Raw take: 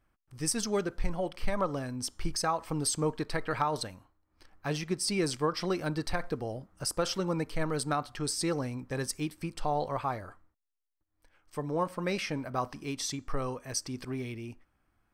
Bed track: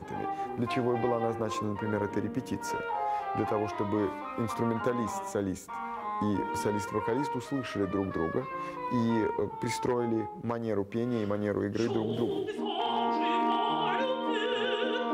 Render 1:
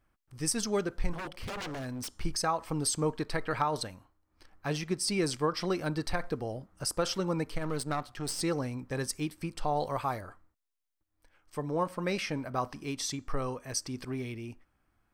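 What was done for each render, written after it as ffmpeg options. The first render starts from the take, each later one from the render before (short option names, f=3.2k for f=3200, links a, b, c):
-filter_complex "[0:a]asettb=1/sr,asplit=3[a][b][c];[a]atrim=end=1.134[d];[b]atrim=start=1.13:end=2.21,asetpts=PTS-STARTPTS,afade=t=in:d=0.004:c=qsin,afade=t=out:st=1.076:d=0.004:c=qsin,aeval=exprs='0.0224*(abs(mod(val(0)/0.0224+3,4)-2)-1)':c=same[e];[c]atrim=start=2.206[f];[d][e]acrossfade=d=0.004:c1=hsin:c2=qsin[g];[g][f]acrossfade=d=0.004:c1=qsin:c2=hsin,asettb=1/sr,asplit=3[h][i][j];[h]atrim=end=7.574[k];[i]atrim=start=7.57:end=8.41,asetpts=PTS-STARTPTS,afade=t=in:d=0.004:c=qsin,afade=t=out:st=0.836:d=0.004:c=qsin,aeval=exprs='if(lt(val(0),0),0.447*val(0),val(0))':c=same[l];[j]atrim=start=8.406[m];[k][l]acrossfade=d=0.004:c1=hsin:c2=qsin[n];[n][m]acrossfade=d=0.004:c1=qsin:c2=hsin,asettb=1/sr,asplit=3[o][p][q];[o]atrim=end=9.764[r];[p]atrim=start=9.76:end=10.21,asetpts=PTS-STARTPTS,afade=t=in:d=0.004:c=qsin,afade=t=out:st=0.446:d=0.004:c=qsin,highshelf=f=6.7k:g=12[s];[q]atrim=start=10.206[t];[r][s]acrossfade=d=0.004:c1=hsin:c2=qsin[u];[u][t]acrossfade=d=0.004:c1=qsin:c2=hsin"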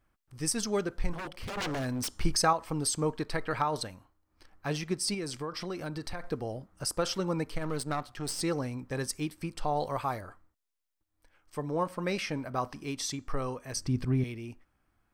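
-filter_complex "[0:a]asettb=1/sr,asplit=3[a][b][c];[a]atrim=end=5.144[d];[b]atrim=start=5.14:end=6.31,asetpts=PTS-STARTPTS,afade=t=in:d=0.004:c=qsin,afade=t=out:st=1.166:d=0.004:c=qsin,acompressor=threshold=-34dB:ratio=3:attack=3.2:release=140:knee=1:detection=peak[e];[c]atrim=start=6.306[f];[d][e]acrossfade=d=0.004:c1=hsin:c2=qsin[g];[g][f]acrossfade=d=0.004:c1=qsin:c2=hsin,asettb=1/sr,asplit=3[h][i][j];[h]atrim=end=13.764[k];[i]atrim=start=13.76:end=14.24,asetpts=PTS-STARTPTS,afade=t=in:d=0.004:c=qsin,afade=t=out:st=0.476:d=0.004:c=qsin,bass=f=250:g=14,treble=f=4k:g=-4[l];[j]atrim=start=14.236[m];[k][l]acrossfade=d=0.004:c1=hsin:c2=qsin[n];[n][m]acrossfade=d=0.004:c1=qsin:c2=hsin,asplit=3[o][p][q];[o]atrim=end=1.572[r];[p]atrim=start=1.568:end=2.532,asetpts=PTS-STARTPTS,volume=5dB[s];[q]atrim=start=2.528[t];[r][s]acrossfade=d=0.004:c1=hsin:c2=hsin[u];[u][t]acrossfade=d=0.004:c1=hsin:c2=hsin"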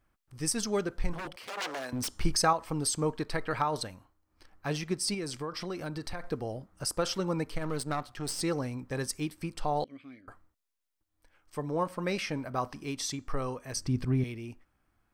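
-filter_complex "[0:a]asettb=1/sr,asplit=3[a][b][c];[a]atrim=end=1.364[d];[b]atrim=start=1.36:end=1.93,asetpts=PTS-STARTPTS,afade=t=in:d=0.004:c=qsin,afade=t=out:st=0.566:d=0.004:c=qsin,highpass=490[e];[c]atrim=start=1.926[f];[d][e]acrossfade=d=0.004:c1=hsin:c2=qsin[g];[g][f]acrossfade=d=0.004:c1=qsin:c2=hsin,asettb=1/sr,asplit=3[h][i][j];[h]atrim=end=9.844[k];[i]atrim=start=9.84:end=10.28,asetpts=PTS-STARTPTS,afade=t=in:d=0.004:c=qsin,afade=t=out:st=0.436:d=0.004:c=qsin,asplit=3[l][m][n];[l]bandpass=f=270:t=q:w=8,volume=0dB[o];[m]bandpass=f=2.29k:t=q:w=8,volume=-6dB[p];[n]bandpass=f=3.01k:t=q:w=8,volume=-9dB[q];[o][p][q]amix=inputs=3:normalize=0[r];[j]atrim=start=10.276[s];[k][r]acrossfade=d=0.004:c1=hsin:c2=qsin[t];[t][s]acrossfade=d=0.004:c1=qsin:c2=hsin"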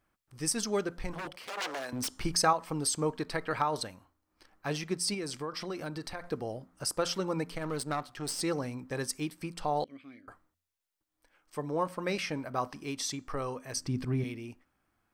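-af "lowshelf=f=87:g=-10.5,bandreject=f=86.37:t=h:w=4,bandreject=f=172.74:t=h:w=4,bandreject=f=259.11:t=h:w=4"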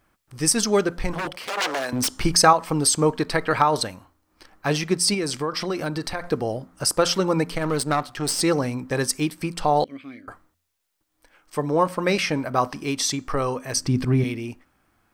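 -af "volume=11dB,alimiter=limit=-3dB:level=0:latency=1"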